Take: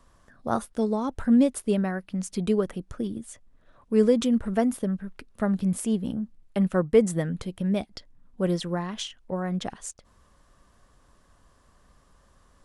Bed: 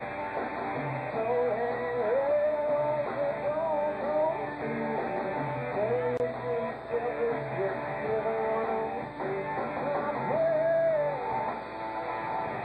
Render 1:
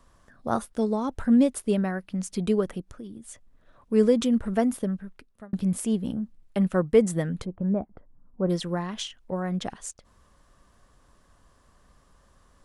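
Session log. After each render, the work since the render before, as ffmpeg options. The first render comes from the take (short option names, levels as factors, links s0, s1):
-filter_complex "[0:a]asplit=3[s0][s1][s2];[s0]afade=t=out:st=2.8:d=0.02[s3];[s1]acompressor=threshold=0.00631:ratio=2:attack=3.2:release=140:knee=1:detection=peak,afade=t=in:st=2.8:d=0.02,afade=t=out:st=3.24:d=0.02[s4];[s2]afade=t=in:st=3.24:d=0.02[s5];[s3][s4][s5]amix=inputs=3:normalize=0,asplit=3[s6][s7][s8];[s6]afade=t=out:st=7.44:d=0.02[s9];[s7]lowpass=f=1300:w=0.5412,lowpass=f=1300:w=1.3066,afade=t=in:st=7.44:d=0.02,afade=t=out:st=8.49:d=0.02[s10];[s8]afade=t=in:st=8.49:d=0.02[s11];[s9][s10][s11]amix=inputs=3:normalize=0,asplit=2[s12][s13];[s12]atrim=end=5.53,asetpts=PTS-STARTPTS,afade=t=out:st=4.83:d=0.7[s14];[s13]atrim=start=5.53,asetpts=PTS-STARTPTS,afade=t=in:d=0.004:c=hsin[s15];[s14][s15]concat=n=2:v=0:a=1"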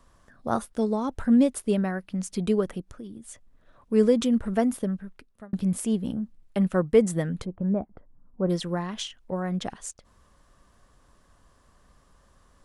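-af anull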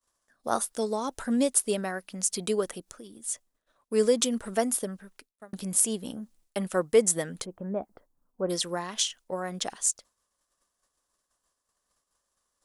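-af "agate=range=0.0224:threshold=0.00501:ratio=3:detection=peak,bass=f=250:g=-14,treble=f=4000:g=13"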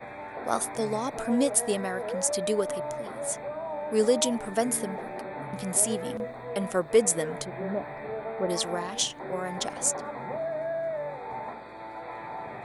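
-filter_complex "[1:a]volume=0.531[s0];[0:a][s0]amix=inputs=2:normalize=0"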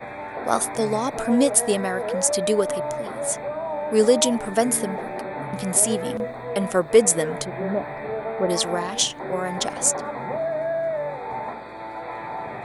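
-af "volume=2,alimiter=limit=0.794:level=0:latency=1"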